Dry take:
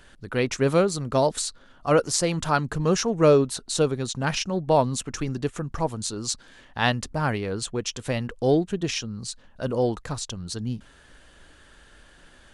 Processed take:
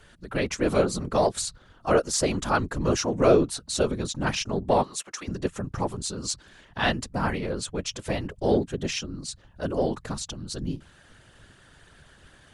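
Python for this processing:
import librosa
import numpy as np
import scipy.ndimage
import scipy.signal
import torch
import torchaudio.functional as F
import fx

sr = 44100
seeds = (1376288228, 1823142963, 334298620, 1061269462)

p1 = fx.highpass(x, sr, hz=640.0, slope=12, at=(4.83, 5.28))
p2 = fx.whisperise(p1, sr, seeds[0])
p3 = 10.0 ** (-14.5 / 20.0) * np.tanh(p2 / 10.0 ** (-14.5 / 20.0))
p4 = p2 + F.gain(torch.from_numpy(p3), -9.0).numpy()
y = F.gain(torch.from_numpy(p4), -4.0).numpy()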